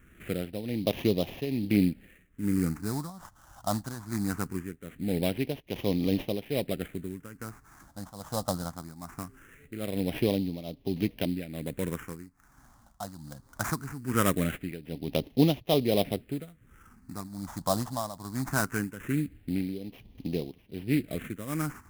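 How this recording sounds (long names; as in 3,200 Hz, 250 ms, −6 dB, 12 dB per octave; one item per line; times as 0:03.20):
tremolo triangle 1.2 Hz, depth 85%
aliases and images of a low sample rate 4,500 Hz, jitter 20%
phaser sweep stages 4, 0.21 Hz, lowest notch 400–1,400 Hz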